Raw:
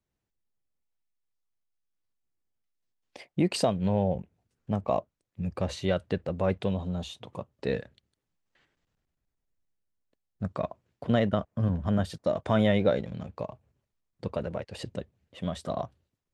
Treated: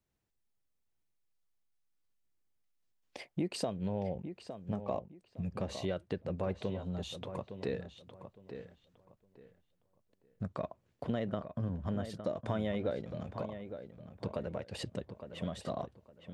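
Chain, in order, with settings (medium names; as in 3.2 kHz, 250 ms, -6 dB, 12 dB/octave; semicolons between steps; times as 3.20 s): dynamic bell 360 Hz, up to +4 dB, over -35 dBFS, Q 1.3; compression 2.5:1, threshold -37 dBFS, peak gain reduction 13.5 dB; filtered feedback delay 861 ms, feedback 24%, low-pass 3.1 kHz, level -9.5 dB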